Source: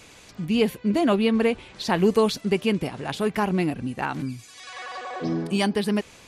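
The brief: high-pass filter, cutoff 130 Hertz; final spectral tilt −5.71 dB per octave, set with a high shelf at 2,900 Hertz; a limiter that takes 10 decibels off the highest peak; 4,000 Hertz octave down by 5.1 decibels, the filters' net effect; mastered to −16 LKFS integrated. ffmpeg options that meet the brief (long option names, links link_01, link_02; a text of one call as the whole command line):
ffmpeg -i in.wav -af "highpass=130,highshelf=frequency=2900:gain=-4.5,equalizer=frequency=4000:width_type=o:gain=-3.5,volume=13dB,alimiter=limit=-6dB:level=0:latency=1" out.wav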